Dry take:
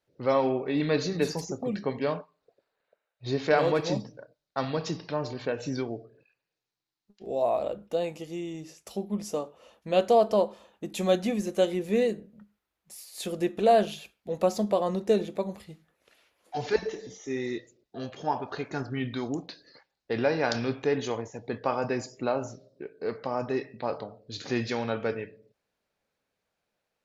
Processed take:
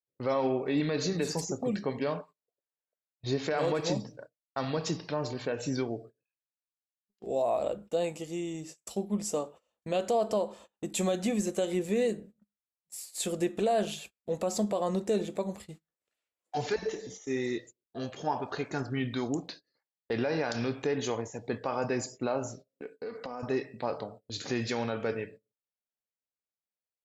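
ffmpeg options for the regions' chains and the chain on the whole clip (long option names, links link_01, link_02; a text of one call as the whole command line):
ffmpeg -i in.wav -filter_complex "[0:a]asettb=1/sr,asplit=3[link_01][link_02][link_03];[link_01]atrim=end=22.674[link_04];[link_02]atrim=start=22.67:end=23.43,asetpts=PTS-STARTPTS,afade=type=in:duration=0.004:curve=qsin,afade=type=out:start_time=0.756:duration=0.004:curve=qsin,lowshelf=frequency=100:gain=-11,aecho=1:1:4.1:0.55,atrim=end_sample=33516,acompressor=threshold=-34dB:ratio=10:attack=3.2:release=140:knee=1:detection=peak[link_05];[link_03]atrim=start=23.426[link_06];[link_04][link_05]acrossfade=duration=0.004:curve1=hsin:curve2=qsin[link_07];[link_07][link_06]acrossfade=duration=0.004:curve1=qsin:curve2=hsin,agate=range=-25dB:threshold=-47dB:ratio=16:detection=peak,equalizer=frequency=7800:width=3.7:gain=12.5,alimiter=limit=-19.5dB:level=0:latency=1:release=91" out.wav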